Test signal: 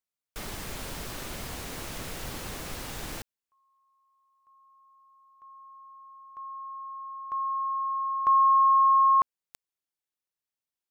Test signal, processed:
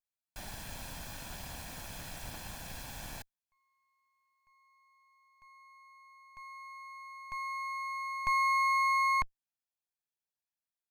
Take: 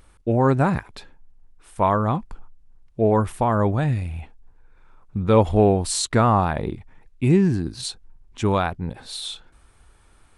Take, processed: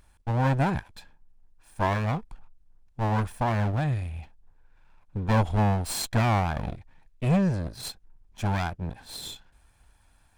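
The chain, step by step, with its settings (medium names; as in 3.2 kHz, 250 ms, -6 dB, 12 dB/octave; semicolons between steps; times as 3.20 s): comb filter that takes the minimum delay 1.2 ms; trim -5 dB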